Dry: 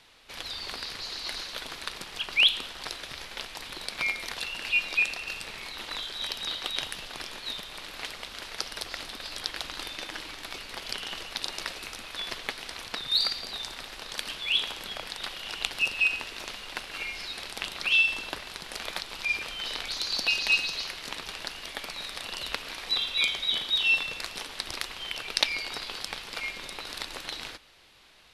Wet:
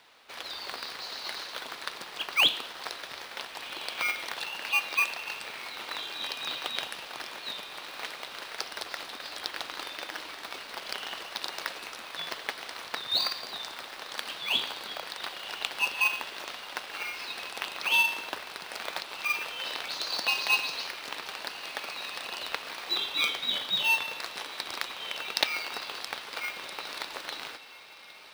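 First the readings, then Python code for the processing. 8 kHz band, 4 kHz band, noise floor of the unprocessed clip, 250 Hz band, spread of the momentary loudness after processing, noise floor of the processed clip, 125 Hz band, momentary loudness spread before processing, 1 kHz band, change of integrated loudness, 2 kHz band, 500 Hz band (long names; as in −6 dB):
−1.5 dB, −2.0 dB, −44 dBFS, −2.0 dB, 13 LU, −44 dBFS, can't be measured, 14 LU, +4.5 dB, −1.5 dB, −1.5 dB, +1.0 dB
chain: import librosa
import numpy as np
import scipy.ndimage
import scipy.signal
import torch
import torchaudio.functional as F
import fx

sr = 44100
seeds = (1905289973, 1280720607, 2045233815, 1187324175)

p1 = fx.high_shelf(x, sr, hz=2700.0, db=-9.5)
p2 = fx.echo_diffused(p1, sr, ms=1538, feedback_pct=44, wet_db=-15.0)
p3 = fx.sample_hold(p2, sr, seeds[0], rate_hz=3600.0, jitter_pct=0)
p4 = p2 + (p3 * 10.0 ** (-7.5 / 20.0))
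p5 = fx.highpass(p4, sr, hz=930.0, slope=6)
y = p5 * 10.0 ** (4.0 / 20.0)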